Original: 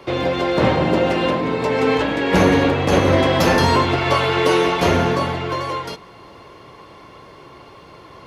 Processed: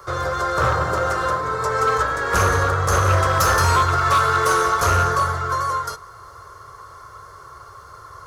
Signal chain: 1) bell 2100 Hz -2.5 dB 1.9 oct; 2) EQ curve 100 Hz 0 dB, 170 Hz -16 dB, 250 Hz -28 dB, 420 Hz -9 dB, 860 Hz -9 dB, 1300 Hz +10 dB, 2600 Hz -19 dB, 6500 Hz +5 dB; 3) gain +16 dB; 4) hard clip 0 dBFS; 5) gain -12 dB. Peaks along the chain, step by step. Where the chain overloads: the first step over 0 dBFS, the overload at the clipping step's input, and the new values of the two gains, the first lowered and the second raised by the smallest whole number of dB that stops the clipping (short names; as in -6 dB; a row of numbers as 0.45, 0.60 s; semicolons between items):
-3.0, -7.5, +8.5, 0.0, -12.0 dBFS; step 3, 8.5 dB; step 3 +7 dB, step 5 -3 dB